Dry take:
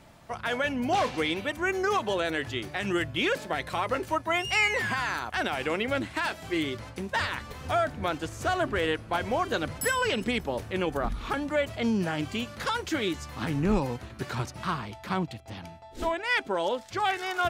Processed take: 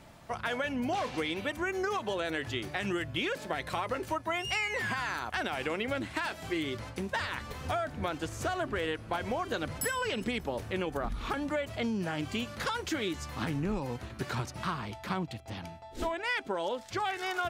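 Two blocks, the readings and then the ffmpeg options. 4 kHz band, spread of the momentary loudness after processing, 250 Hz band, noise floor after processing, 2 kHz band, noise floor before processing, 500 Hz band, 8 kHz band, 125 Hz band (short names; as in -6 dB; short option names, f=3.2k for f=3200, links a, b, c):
-4.5 dB, 4 LU, -4.0 dB, -48 dBFS, -5.0 dB, -47 dBFS, -5.0 dB, -3.0 dB, -3.5 dB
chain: -af "acompressor=threshold=-29dB:ratio=6"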